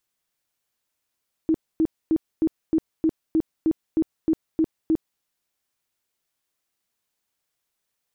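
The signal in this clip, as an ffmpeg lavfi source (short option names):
-f lavfi -i "aevalsrc='0.158*sin(2*PI*320*mod(t,0.31))*lt(mod(t,0.31),17/320)':d=3.72:s=44100"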